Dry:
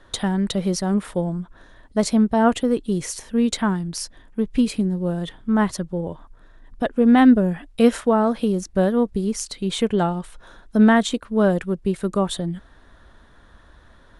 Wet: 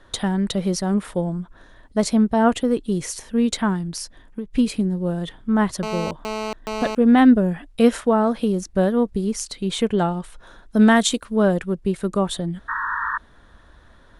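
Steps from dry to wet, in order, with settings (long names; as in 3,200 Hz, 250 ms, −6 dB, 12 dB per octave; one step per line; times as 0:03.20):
0:03.93–0:04.53: downward compressor 6 to 1, threshold −27 dBFS, peak gain reduction 10 dB
0:05.83–0:06.95: phone interference −27 dBFS
0:10.77–0:11.36: high-shelf EQ 3,800 Hz +11 dB
0:12.68–0:13.18: sound drawn into the spectrogram noise 890–1,900 Hz −25 dBFS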